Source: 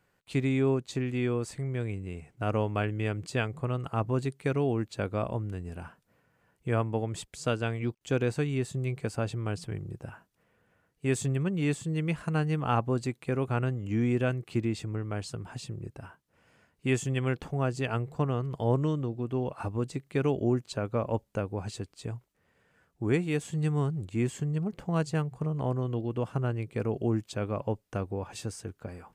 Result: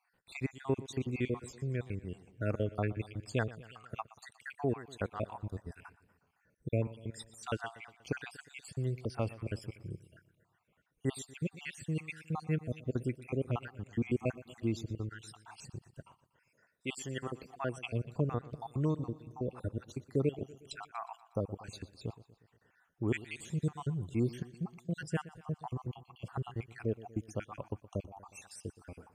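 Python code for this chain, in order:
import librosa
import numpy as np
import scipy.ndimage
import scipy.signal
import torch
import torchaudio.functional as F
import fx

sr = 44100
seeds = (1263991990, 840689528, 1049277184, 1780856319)

y = fx.spec_dropout(x, sr, seeds[0], share_pct=63)
y = fx.highpass(y, sr, hz=fx.line((16.01, 900.0), (17.78, 220.0)), slope=6, at=(16.01, 17.78), fade=0.02)
y = fx.echo_feedback(y, sr, ms=120, feedback_pct=57, wet_db=-18.0)
y = F.gain(torch.from_numpy(y), -2.5).numpy()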